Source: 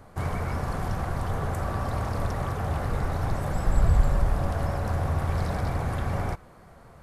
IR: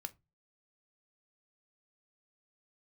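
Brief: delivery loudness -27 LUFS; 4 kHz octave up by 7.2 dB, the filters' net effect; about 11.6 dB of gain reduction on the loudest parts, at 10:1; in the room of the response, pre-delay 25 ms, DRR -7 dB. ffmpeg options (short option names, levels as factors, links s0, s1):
-filter_complex "[0:a]equalizer=f=4000:t=o:g=9,acompressor=threshold=0.0501:ratio=10,asplit=2[s0][s1];[1:a]atrim=start_sample=2205,adelay=25[s2];[s1][s2]afir=irnorm=-1:irlink=0,volume=3.16[s3];[s0][s3]amix=inputs=2:normalize=0,volume=0.708"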